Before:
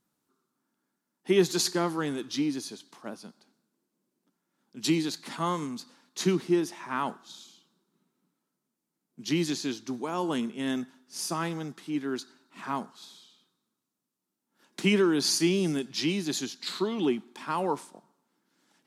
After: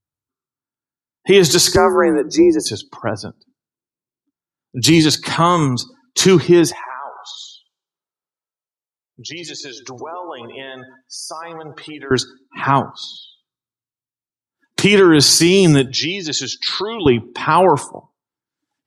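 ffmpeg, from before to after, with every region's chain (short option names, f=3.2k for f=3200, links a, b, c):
-filter_complex "[0:a]asettb=1/sr,asplit=3[a][b][c];[a]atrim=end=1.764[d];[b]atrim=start=1.76:end=2.66,asetpts=PTS-STARTPTS,afade=t=in:d=0.004:c=qsin,afade=t=out:st=0.896:d=0.004:c=qsin,equalizer=f=3.5k:t=o:w=1.4:g=-14,afreqshift=46,asuperstop=centerf=3100:order=20:qfactor=3.3[e];[c]atrim=start=2.656[f];[d][e]acrossfade=d=0.004:c1=hsin:c2=qsin[g];[g][f]acrossfade=d=0.004:c1=qsin:c2=hsin,asettb=1/sr,asplit=3[h][i][j];[h]atrim=end=6.724[k];[i]atrim=start=6.72:end=12.11,asetpts=PTS-STARTPTS,afade=t=in:d=0.004:c=qsin,afade=t=out:st=5.386:d=0.004:c=qsin,lowshelf=f=370:t=q:w=1.5:g=-12.5,acompressor=threshold=-46dB:ratio=6:attack=3.2:release=140:knee=1:detection=peak,aecho=1:1:114|228|342|456:0.316|0.126|0.0506|0.0202,atrim=end_sample=237699[l];[j]atrim=start=12.106[m];[k][l]acrossfade=d=0.004:c1=hsin:c2=qsin[n];[n][m]acrossfade=d=0.004:c1=qsin:c2=hsin,asettb=1/sr,asplit=3[o][p][q];[o]atrim=end=15.884[r];[p]atrim=start=15.88:end=17.06,asetpts=PTS-STARTPTS,afade=t=in:d=0.004:c=qsin,afade=t=out:st=1.176:d=0.004:c=qsin,lowpass=f=6.9k:w=0.5412,lowpass=f=6.9k:w=1.3066,acompressor=threshold=-39dB:ratio=2:attack=3.2:release=140:knee=1:detection=peak,lowshelf=f=270:g=-11.5[s];[q]atrim=start=17.056[t];[r][s]acrossfade=d=0.004:c1=hsin:c2=qsin[u];[u][t]acrossfade=d=0.004:c1=qsin:c2=hsin,afftdn=nr=33:nf=-52,lowshelf=f=140:t=q:w=3:g=12.5,alimiter=level_in=21dB:limit=-1dB:release=50:level=0:latency=1,volume=-1dB"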